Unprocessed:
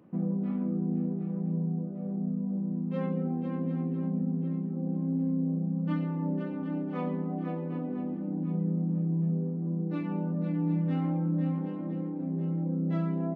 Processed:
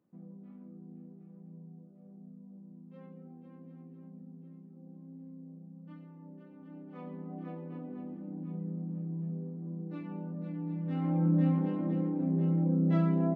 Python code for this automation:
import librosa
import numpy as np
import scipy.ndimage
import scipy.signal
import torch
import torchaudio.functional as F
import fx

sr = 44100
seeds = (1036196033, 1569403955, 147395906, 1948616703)

y = fx.gain(x, sr, db=fx.line((6.41, -19.5), (7.39, -8.5), (10.78, -8.5), (11.25, 2.5)))